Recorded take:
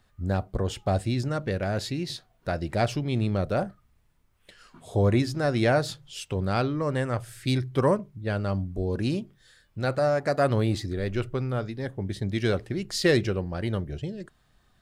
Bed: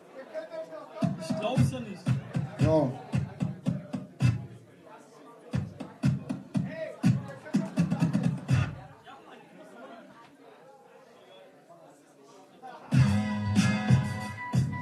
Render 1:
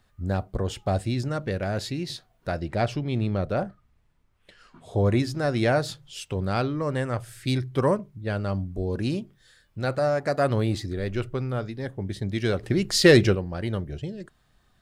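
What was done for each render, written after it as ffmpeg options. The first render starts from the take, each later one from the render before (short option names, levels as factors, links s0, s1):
-filter_complex "[0:a]asettb=1/sr,asplit=3[s0][s1][s2];[s0]atrim=end=2.604[s3];[s1]atrim=start=2.6:end=5.06,asetpts=PTS-STARTPTS,afade=t=in:d=0.004:c=qsin,afade=t=out:st=2.456:d=0.004:c=qsin,highshelf=f=7500:g=-11.5[s4];[s2]atrim=start=5.056[s5];[s3][s4]acrossfade=d=0.004:c1=hsin:c2=qsin[s6];[s6][s5]acrossfade=d=0.004:c1=qsin:c2=hsin,asettb=1/sr,asplit=3[s7][s8][s9];[s7]atrim=end=12.634[s10];[s8]atrim=start=12.63:end=13.35,asetpts=PTS-STARTPTS,afade=t=in:d=0.004:c=qsin,afade=t=out:st=0.716:d=0.004:c=qsin,acontrast=82[s11];[s9]atrim=start=13.346[s12];[s10][s11]acrossfade=d=0.004:c1=hsin:c2=qsin[s13];[s13][s12]acrossfade=d=0.004:c1=qsin:c2=hsin"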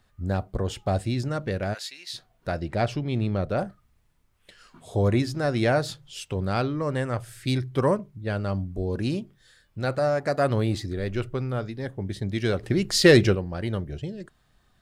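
-filter_complex "[0:a]asplit=3[s0][s1][s2];[s0]afade=t=out:st=1.73:d=0.02[s3];[s1]highpass=1400,afade=t=in:st=1.73:d=0.02,afade=t=out:st=2.13:d=0.02[s4];[s2]afade=t=in:st=2.13:d=0.02[s5];[s3][s4][s5]amix=inputs=3:normalize=0,asettb=1/sr,asplit=3[s6][s7][s8];[s6]atrim=end=3.584[s9];[s7]atrim=start=3.58:end=5.08,asetpts=PTS-STARTPTS,afade=t=in:d=0.004:c=qsin,afade=t=out:st=1.496:d=0.004:c=qsin,aemphasis=mode=production:type=cd[s10];[s8]atrim=start=5.076[s11];[s9][s10]acrossfade=d=0.004:c1=hsin:c2=qsin[s12];[s12][s11]acrossfade=d=0.004:c1=qsin:c2=hsin"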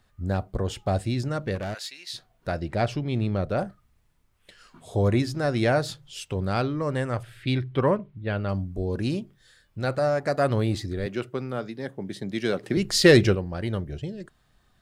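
-filter_complex "[0:a]asettb=1/sr,asplit=3[s0][s1][s2];[s0]atrim=end=1.554[s3];[s1]atrim=start=1.55:end=1.97,asetpts=PTS-STARTPTS,afade=t=in:d=0.004:c=qsin,afade=t=out:st=0.416:d=0.004:c=qsin,asoftclip=type=hard:threshold=0.0398[s4];[s2]atrim=start=1.966[s5];[s3][s4]acrossfade=d=0.004:c1=hsin:c2=qsin[s6];[s6][s5]acrossfade=d=0.004:c1=qsin:c2=hsin,asettb=1/sr,asplit=3[s7][s8][s9];[s7]atrim=end=7.234[s10];[s8]atrim=start=7.23:end=8.49,asetpts=PTS-STARTPTS,afade=t=in:d=0.004:c=qsin,afade=t=out:st=1.256:d=0.004:c=qsin,highshelf=f=4500:t=q:w=1.5:g=-11.5[s11];[s9]atrim=start=8.486[s12];[s10][s11]acrossfade=d=0.004:c1=hsin:c2=qsin[s13];[s13][s12]acrossfade=d=0.004:c1=qsin:c2=hsin,asettb=1/sr,asplit=3[s14][s15][s16];[s14]atrim=end=11.064[s17];[s15]atrim=start=11.06:end=12.77,asetpts=PTS-STARTPTS,afade=t=in:d=0.004:c=qsin,afade=t=out:st=1.706:d=0.004:c=qsin,highpass=f=150:w=0.5412,highpass=f=150:w=1.3066[s18];[s16]atrim=start=12.766[s19];[s17][s18]acrossfade=d=0.004:c1=hsin:c2=qsin[s20];[s20][s19]acrossfade=d=0.004:c1=qsin:c2=hsin"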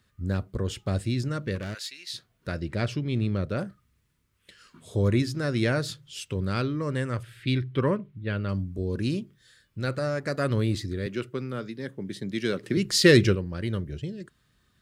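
-af "highpass=58,equalizer=f=750:w=2.2:g=-13.5"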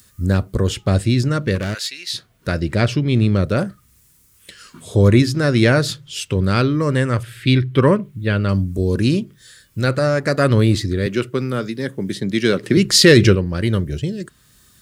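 -filter_complex "[0:a]acrossover=split=6000[s0][s1];[s1]acompressor=mode=upward:threshold=0.00282:ratio=2.5[s2];[s0][s2]amix=inputs=2:normalize=0,alimiter=level_in=3.55:limit=0.891:release=50:level=0:latency=1"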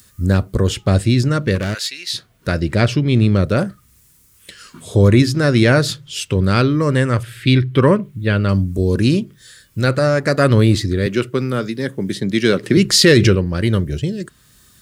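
-af "volume=1.26,alimiter=limit=0.794:level=0:latency=1"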